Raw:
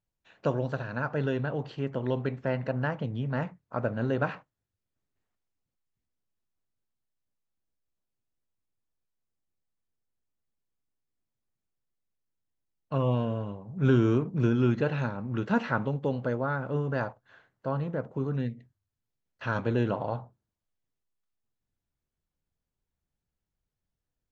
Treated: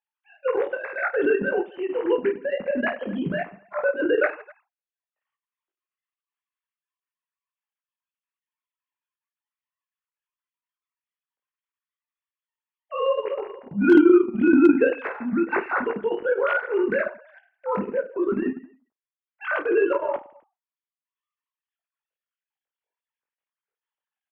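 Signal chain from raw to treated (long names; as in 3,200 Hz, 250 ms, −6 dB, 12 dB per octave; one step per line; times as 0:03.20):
three sine waves on the formant tracks
on a send: reverse bouncing-ball delay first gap 20 ms, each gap 1.5×, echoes 5
on the sum: hard clipping −11 dBFS, distortion −32 dB
transient designer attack −5 dB, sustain −9 dB
level +6.5 dB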